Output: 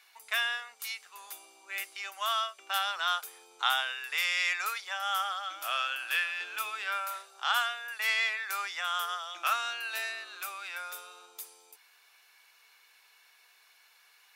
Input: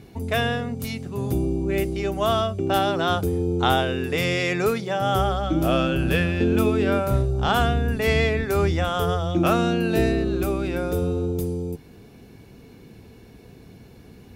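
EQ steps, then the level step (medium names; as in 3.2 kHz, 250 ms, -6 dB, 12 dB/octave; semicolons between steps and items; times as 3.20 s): high-pass 1.1 kHz 24 dB/octave; -2.0 dB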